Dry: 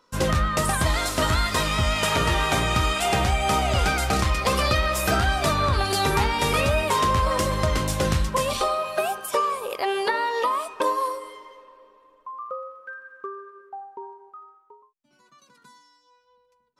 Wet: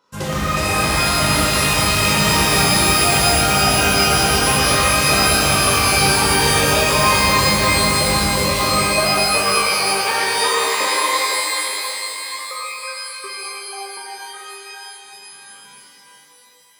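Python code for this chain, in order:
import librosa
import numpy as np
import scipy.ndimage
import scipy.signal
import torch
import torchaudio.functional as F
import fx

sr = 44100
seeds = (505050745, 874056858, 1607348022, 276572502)

y = scipy.signal.sosfilt(scipy.signal.butter(2, 63.0, 'highpass', fs=sr, output='sos'), x)
y = fx.rev_shimmer(y, sr, seeds[0], rt60_s=3.4, semitones=12, shimmer_db=-2, drr_db=-6.0)
y = y * librosa.db_to_amplitude(-3.0)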